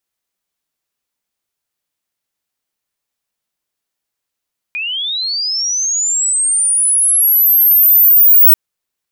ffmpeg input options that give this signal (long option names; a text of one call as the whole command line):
ffmpeg -f lavfi -i "aevalsrc='pow(10,(-18+15*t/3.79)/20)*sin(2*PI*(2400*t+13600*t*t/(2*3.79)))':duration=3.79:sample_rate=44100" out.wav